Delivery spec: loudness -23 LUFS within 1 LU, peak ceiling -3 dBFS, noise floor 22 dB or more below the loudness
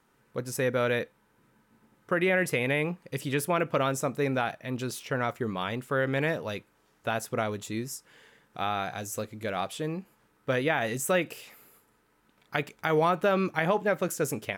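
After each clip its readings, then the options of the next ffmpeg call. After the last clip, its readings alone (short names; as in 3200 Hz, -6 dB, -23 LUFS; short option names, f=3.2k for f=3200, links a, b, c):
loudness -29.5 LUFS; peak -10.0 dBFS; loudness target -23.0 LUFS
-> -af "volume=6.5dB"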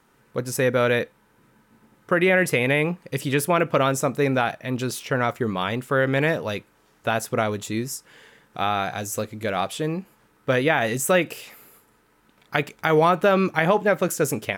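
loudness -23.0 LUFS; peak -3.5 dBFS; noise floor -61 dBFS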